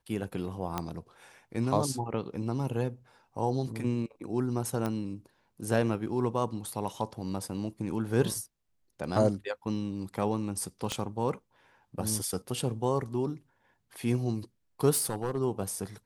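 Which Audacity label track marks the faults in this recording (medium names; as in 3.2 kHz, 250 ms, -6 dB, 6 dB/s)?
0.780000	0.780000	pop -16 dBFS
4.860000	4.860000	pop -19 dBFS
10.920000	10.920000	pop -17 dBFS
14.910000	15.380000	clipped -24.5 dBFS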